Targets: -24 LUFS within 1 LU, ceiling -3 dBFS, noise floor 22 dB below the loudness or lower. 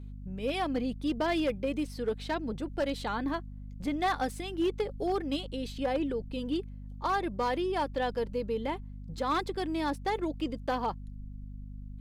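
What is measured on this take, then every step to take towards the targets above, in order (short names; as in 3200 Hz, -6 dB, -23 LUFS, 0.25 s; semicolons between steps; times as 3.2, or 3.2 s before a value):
clipped 0.8%; flat tops at -23.0 dBFS; hum 50 Hz; harmonics up to 250 Hz; hum level -40 dBFS; loudness -32.5 LUFS; peak -23.0 dBFS; loudness target -24.0 LUFS
-> clip repair -23 dBFS; notches 50/100/150/200/250 Hz; gain +8.5 dB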